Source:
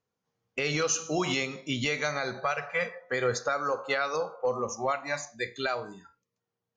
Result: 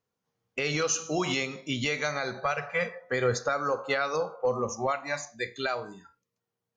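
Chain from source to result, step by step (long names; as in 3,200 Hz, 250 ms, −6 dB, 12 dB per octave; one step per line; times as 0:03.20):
0:02.45–0:04.87: low-shelf EQ 280 Hz +6 dB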